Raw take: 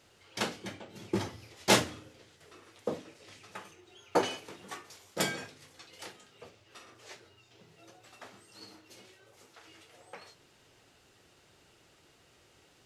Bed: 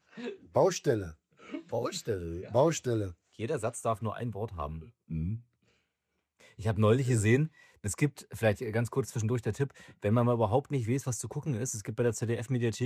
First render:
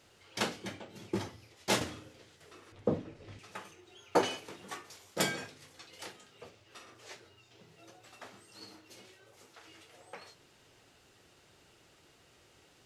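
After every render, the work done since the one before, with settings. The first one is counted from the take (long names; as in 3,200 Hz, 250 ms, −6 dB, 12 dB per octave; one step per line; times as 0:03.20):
0:00.81–0:01.81: fade out quadratic, to −6.5 dB
0:02.72–0:03.39: RIAA equalisation playback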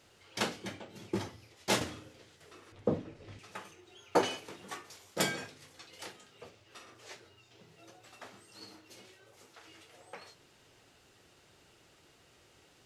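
no processing that can be heard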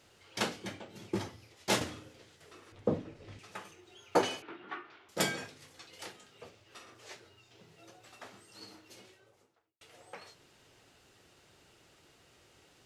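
0:04.42–0:05.09: loudspeaker in its box 170–3,100 Hz, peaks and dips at 180 Hz −9 dB, 340 Hz +7 dB, 500 Hz −9 dB, 1,400 Hz +8 dB
0:08.92–0:09.81: fade out and dull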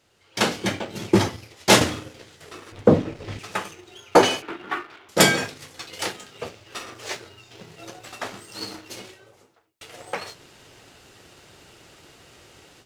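automatic gain control gain up to 14.5 dB
leveller curve on the samples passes 1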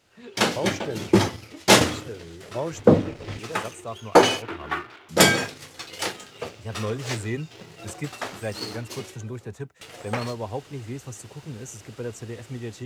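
mix in bed −4.5 dB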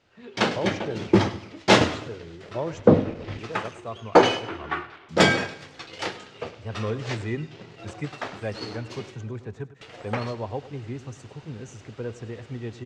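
high-frequency loss of the air 130 metres
repeating echo 102 ms, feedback 43%, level −16 dB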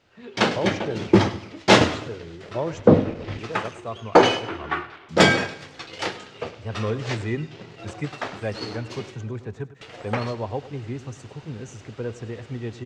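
level +2.5 dB
brickwall limiter −2 dBFS, peak gain reduction 2 dB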